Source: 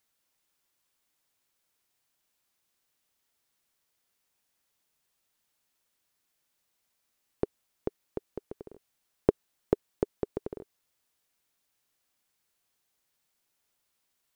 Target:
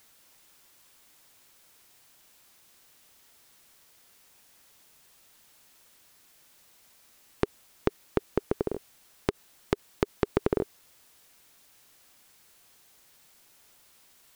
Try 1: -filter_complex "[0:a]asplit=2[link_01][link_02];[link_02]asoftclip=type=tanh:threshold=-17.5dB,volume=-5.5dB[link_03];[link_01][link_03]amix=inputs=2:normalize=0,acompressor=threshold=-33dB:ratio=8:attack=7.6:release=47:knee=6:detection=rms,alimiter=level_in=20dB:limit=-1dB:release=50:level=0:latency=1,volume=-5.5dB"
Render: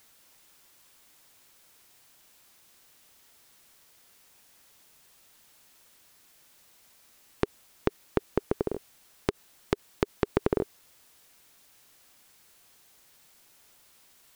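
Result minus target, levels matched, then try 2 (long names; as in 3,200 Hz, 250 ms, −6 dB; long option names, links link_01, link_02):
soft clipping: distortion −5 dB
-filter_complex "[0:a]asplit=2[link_01][link_02];[link_02]asoftclip=type=tanh:threshold=-27dB,volume=-5.5dB[link_03];[link_01][link_03]amix=inputs=2:normalize=0,acompressor=threshold=-33dB:ratio=8:attack=7.6:release=47:knee=6:detection=rms,alimiter=level_in=20dB:limit=-1dB:release=50:level=0:latency=1,volume=-5.5dB"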